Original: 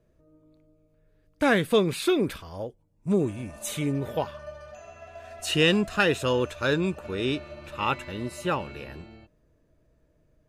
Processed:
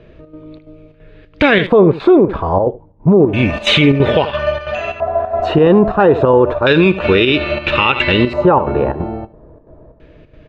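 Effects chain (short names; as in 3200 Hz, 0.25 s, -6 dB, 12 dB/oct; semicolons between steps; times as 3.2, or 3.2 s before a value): fifteen-band EQ 400 Hz +4 dB, 4000 Hz +6 dB, 10000 Hz -7 dB; in parallel at +1.5 dB: compressor, threshold -30 dBFS, peak gain reduction 15 dB; on the sum: chopper 3 Hz, depth 60%, duty 75%; LFO low-pass square 0.3 Hz 900–2700 Hz; on a send: echo 78 ms -19.5 dB; on the sum: maximiser +16.5 dB; gain -1 dB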